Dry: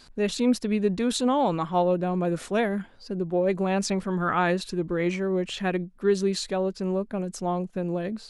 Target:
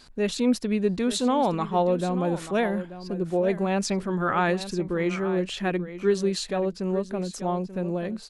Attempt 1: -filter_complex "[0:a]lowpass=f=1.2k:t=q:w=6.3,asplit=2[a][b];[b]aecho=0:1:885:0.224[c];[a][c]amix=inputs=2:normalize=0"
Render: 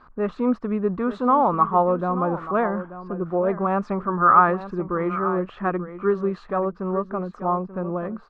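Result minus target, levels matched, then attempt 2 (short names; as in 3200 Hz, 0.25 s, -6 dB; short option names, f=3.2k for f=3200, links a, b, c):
1000 Hz band +5.5 dB
-filter_complex "[0:a]asplit=2[a][b];[b]aecho=0:1:885:0.224[c];[a][c]amix=inputs=2:normalize=0"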